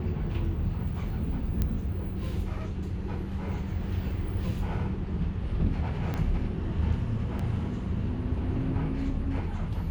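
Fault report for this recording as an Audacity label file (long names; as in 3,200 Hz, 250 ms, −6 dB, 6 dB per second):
1.620000	1.620000	click −14 dBFS
6.140000	6.140000	click −19 dBFS
7.390000	7.390000	drop-out 4.5 ms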